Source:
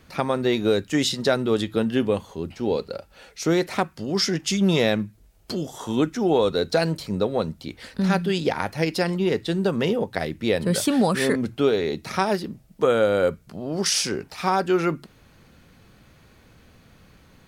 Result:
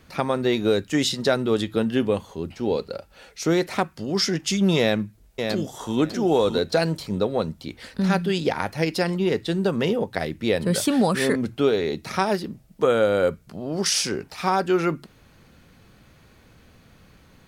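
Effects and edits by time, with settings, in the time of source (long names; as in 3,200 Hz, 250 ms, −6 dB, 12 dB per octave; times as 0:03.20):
0:04.78–0:05.98: delay throw 600 ms, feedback 15%, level −6 dB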